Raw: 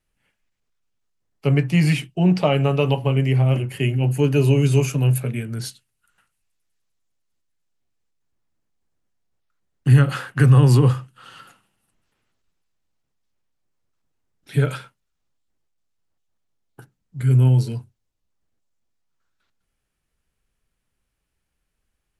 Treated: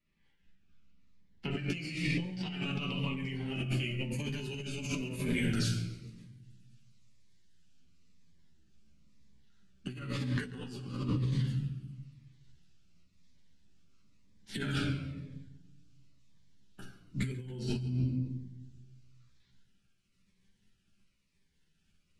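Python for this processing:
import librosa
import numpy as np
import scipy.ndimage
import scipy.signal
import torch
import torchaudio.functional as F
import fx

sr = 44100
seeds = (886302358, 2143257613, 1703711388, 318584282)

y = fx.spec_clip(x, sr, under_db=20)
y = fx.peak_eq(y, sr, hz=640.0, db=-14.5, octaves=2.6)
y = fx.room_shoebox(y, sr, seeds[0], volume_m3=560.0, walls='mixed', distance_m=1.2)
y = fx.chorus_voices(y, sr, voices=4, hz=0.13, base_ms=13, depth_ms=3.0, mix_pct=45)
y = fx.peak_eq(y, sr, hz=210.0, db=5.5, octaves=1.4)
y = fx.over_compress(y, sr, threshold_db=-31.0, ratio=-1.0)
y = fx.lowpass(y, sr, hz=fx.steps((0.0, 2700.0), (1.51, 5200.0)), slope=12)
y = fx.echo_feedback(y, sr, ms=139, feedback_pct=56, wet_db=-21)
y = fx.notch_cascade(y, sr, direction='falling', hz=0.99)
y = y * 10.0 ** (-4.0 / 20.0)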